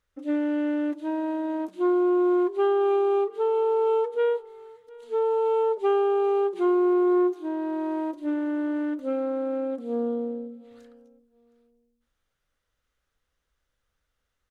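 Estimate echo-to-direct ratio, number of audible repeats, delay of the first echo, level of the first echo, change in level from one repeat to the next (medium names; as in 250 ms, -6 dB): -23.0 dB, 1, 714 ms, -23.0 dB, no regular repeats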